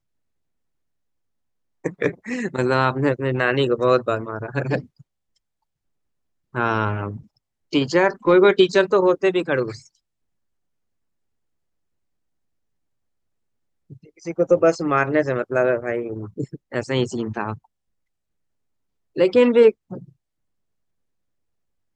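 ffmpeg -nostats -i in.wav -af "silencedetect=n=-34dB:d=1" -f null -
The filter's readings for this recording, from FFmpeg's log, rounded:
silence_start: 0.00
silence_end: 1.85 | silence_duration: 1.85
silence_start: 4.81
silence_end: 6.55 | silence_duration: 1.74
silence_start: 9.79
silence_end: 13.92 | silence_duration: 4.13
silence_start: 17.55
silence_end: 19.16 | silence_duration: 1.61
silence_start: 20.03
silence_end: 21.96 | silence_duration: 1.93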